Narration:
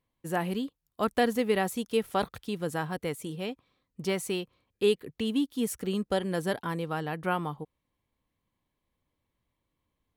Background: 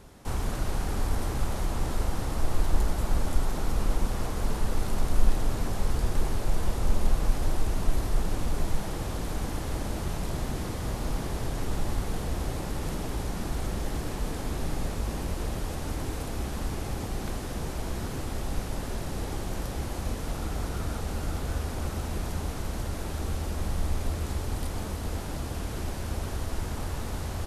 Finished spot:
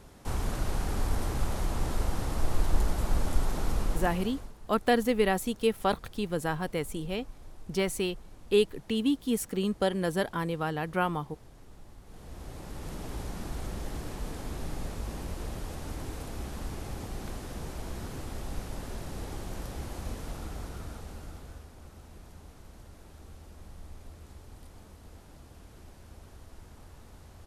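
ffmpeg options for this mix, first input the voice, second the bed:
ffmpeg -i stem1.wav -i stem2.wav -filter_complex "[0:a]adelay=3700,volume=1dB[link_01];[1:a]volume=15dB,afade=type=out:start_time=3.71:duration=0.82:silence=0.0944061,afade=type=in:start_time=12.03:duration=1.13:silence=0.149624,afade=type=out:start_time=20.17:duration=1.53:silence=0.237137[link_02];[link_01][link_02]amix=inputs=2:normalize=0" out.wav

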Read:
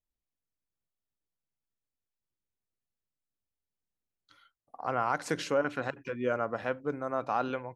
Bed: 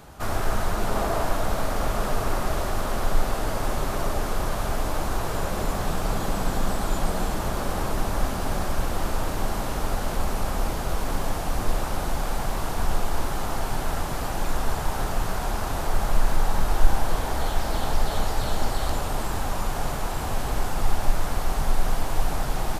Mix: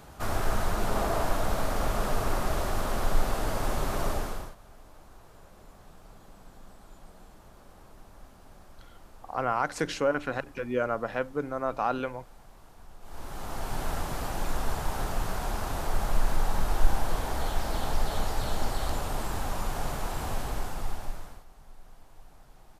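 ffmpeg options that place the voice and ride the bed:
ffmpeg -i stem1.wav -i stem2.wav -filter_complex "[0:a]adelay=4500,volume=2dB[link_01];[1:a]volume=18.5dB,afade=type=out:start_time=4.1:duration=0.45:silence=0.0707946,afade=type=in:start_time=13:duration=0.84:silence=0.0841395,afade=type=out:start_time=20.29:duration=1.16:silence=0.0630957[link_02];[link_01][link_02]amix=inputs=2:normalize=0" out.wav

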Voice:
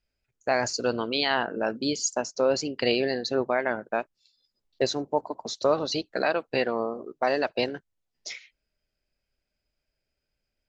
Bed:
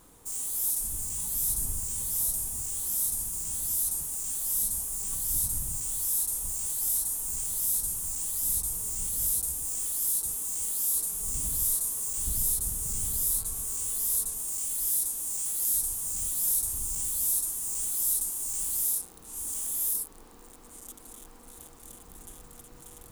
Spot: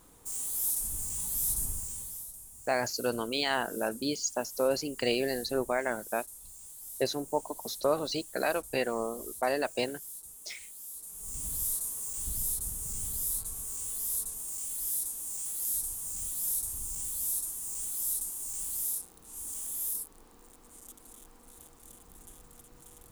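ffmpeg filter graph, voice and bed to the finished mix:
ffmpeg -i stem1.wav -i stem2.wav -filter_complex "[0:a]adelay=2200,volume=-4.5dB[link_01];[1:a]volume=9.5dB,afade=type=out:start_time=1.62:duration=0.64:silence=0.188365,afade=type=in:start_time=10.99:duration=0.53:silence=0.266073[link_02];[link_01][link_02]amix=inputs=2:normalize=0" out.wav

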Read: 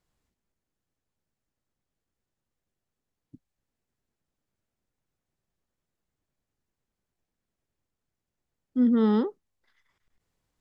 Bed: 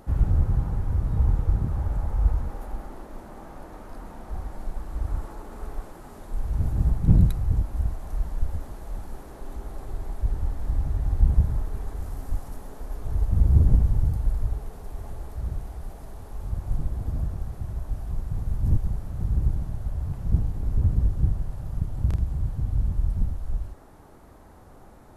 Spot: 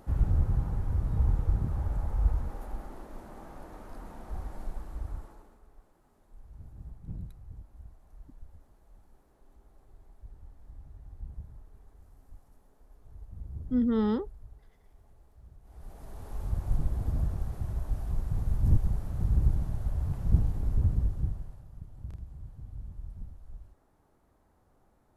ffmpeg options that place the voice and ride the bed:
ffmpeg -i stem1.wav -i stem2.wav -filter_complex "[0:a]adelay=4950,volume=-4.5dB[link_01];[1:a]volume=17dB,afade=type=out:start_time=4.62:duration=0.99:silence=0.11885,afade=type=in:start_time=15.62:duration=0.71:silence=0.0841395,afade=type=out:start_time=20.48:duration=1.19:silence=0.158489[link_02];[link_01][link_02]amix=inputs=2:normalize=0" out.wav

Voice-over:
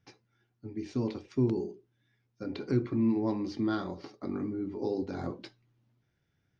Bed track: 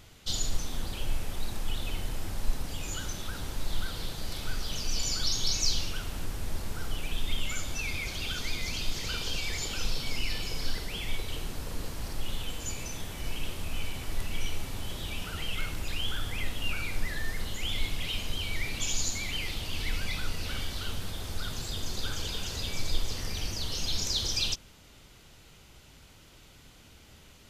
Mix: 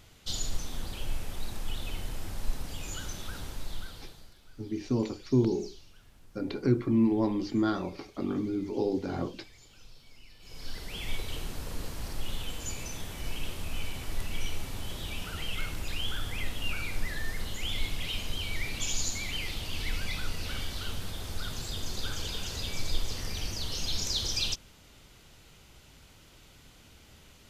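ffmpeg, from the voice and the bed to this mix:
ffmpeg -i stem1.wav -i stem2.wav -filter_complex "[0:a]adelay=3950,volume=3dB[link_01];[1:a]volume=19dB,afade=type=out:start_time=3.36:duration=0.98:silence=0.1,afade=type=in:start_time=10.39:duration=0.72:silence=0.0841395[link_02];[link_01][link_02]amix=inputs=2:normalize=0" out.wav

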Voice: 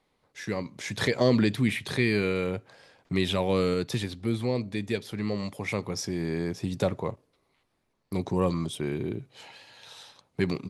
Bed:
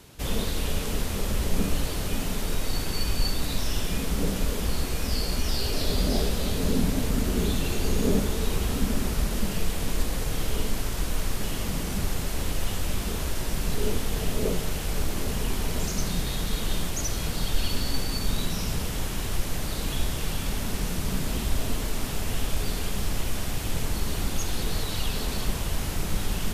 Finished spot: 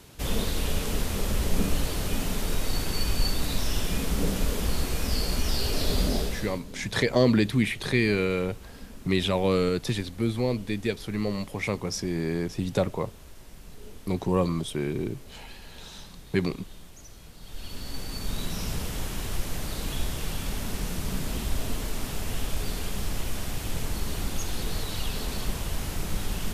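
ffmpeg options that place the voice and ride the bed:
ffmpeg -i stem1.wav -i stem2.wav -filter_complex "[0:a]adelay=5950,volume=1.5dB[link_01];[1:a]volume=16.5dB,afade=type=out:start_time=6.01:duration=0.62:silence=0.112202,afade=type=in:start_time=17.4:duration=1.24:silence=0.149624[link_02];[link_01][link_02]amix=inputs=2:normalize=0" out.wav

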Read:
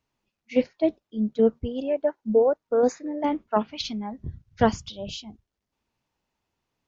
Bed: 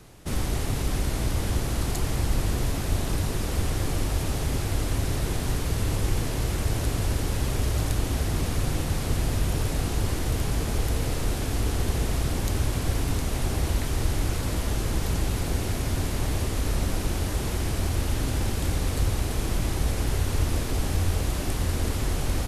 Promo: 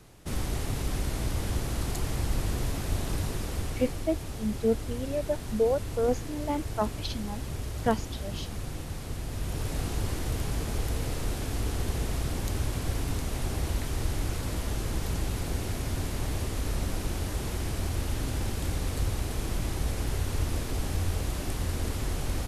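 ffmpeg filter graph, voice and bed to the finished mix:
ffmpeg -i stem1.wav -i stem2.wav -filter_complex "[0:a]adelay=3250,volume=-5.5dB[link_01];[1:a]volume=1.5dB,afade=type=out:start_time=3.24:duration=0.82:silence=0.501187,afade=type=in:start_time=9.27:duration=0.52:silence=0.530884[link_02];[link_01][link_02]amix=inputs=2:normalize=0" out.wav

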